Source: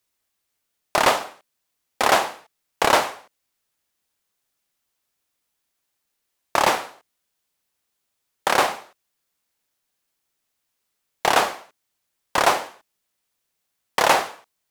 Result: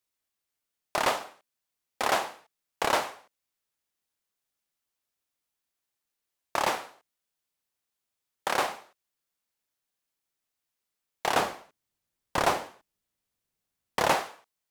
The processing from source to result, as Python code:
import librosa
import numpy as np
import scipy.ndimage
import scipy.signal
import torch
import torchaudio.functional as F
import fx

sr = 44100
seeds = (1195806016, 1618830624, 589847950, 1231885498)

y = fx.low_shelf(x, sr, hz=310.0, db=11.0, at=(11.34, 14.14))
y = F.gain(torch.from_numpy(y), -8.5).numpy()